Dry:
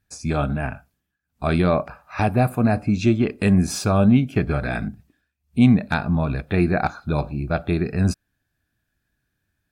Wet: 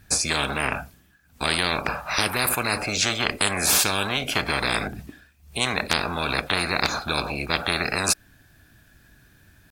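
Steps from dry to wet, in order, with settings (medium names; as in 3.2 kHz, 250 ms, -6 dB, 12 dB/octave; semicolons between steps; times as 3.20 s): tempo 1×; spectrum-flattening compressor 10:1; trim +2 dB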